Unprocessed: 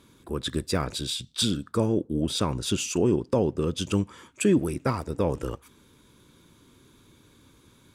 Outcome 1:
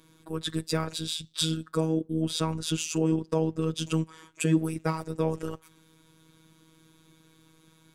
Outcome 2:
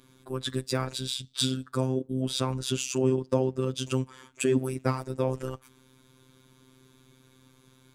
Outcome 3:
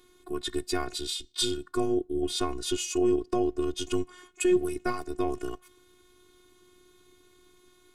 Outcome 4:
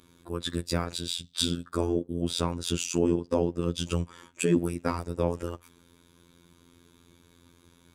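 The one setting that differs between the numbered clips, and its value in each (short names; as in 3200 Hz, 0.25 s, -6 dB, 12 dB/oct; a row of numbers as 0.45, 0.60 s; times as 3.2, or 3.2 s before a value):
robotiser, frequency: 160, 130, 360, 86 Hz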